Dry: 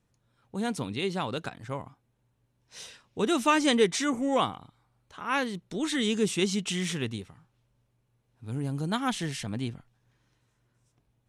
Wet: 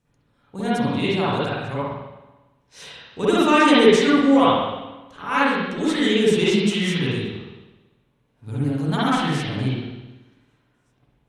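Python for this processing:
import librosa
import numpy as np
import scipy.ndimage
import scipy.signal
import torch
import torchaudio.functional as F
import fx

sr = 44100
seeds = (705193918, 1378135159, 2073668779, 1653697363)

y = fx.cheby_harmonics(x, sr, harmonics=(8,), levels_db=(-38,), full_scale_db=-10.5)
y = fx.rev_spring(y, sr, rt60_s=1.1, pass_ms=(47, 54), chirp_ms=20, drr_db=-9.0)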